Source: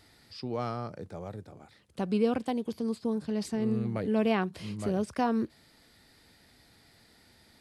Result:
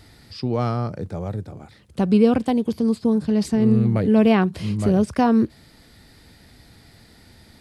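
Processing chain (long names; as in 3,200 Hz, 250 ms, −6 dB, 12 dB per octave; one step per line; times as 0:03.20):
low-shelf EQ 220 Hz +9.5 dB
level +7.5 dB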